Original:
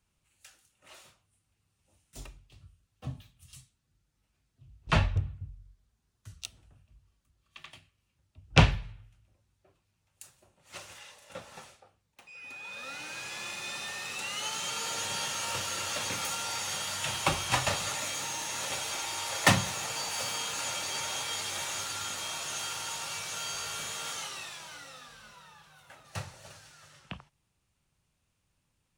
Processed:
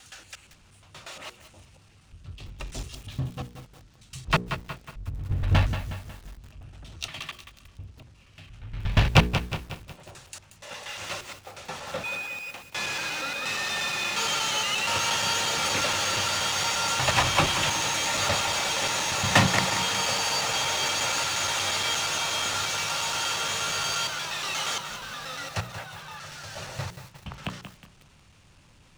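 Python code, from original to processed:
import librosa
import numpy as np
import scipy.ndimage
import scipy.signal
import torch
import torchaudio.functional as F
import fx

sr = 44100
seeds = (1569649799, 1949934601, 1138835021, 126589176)

y = fx.block_reorder(x, sr, ms=118.0, group=6)
y = scipy.signal.sosfilt(scipy.signal.butter(2, 6400.0, 'lowpass', fs=sr, output='sos'), y)
y = fx.hum_notches(y, sr, base_hz=60, count=8)
y = fx.power_curve(y, sr, exponent=0.7)
y = fx.echo_feedback(y, sr, ms=198, feedback_pct=43, wet_db=-20.0)
y = fx.echo_crushed(y, sr, ms=182, feedback_pct=55, bits=7, wet_db=-9)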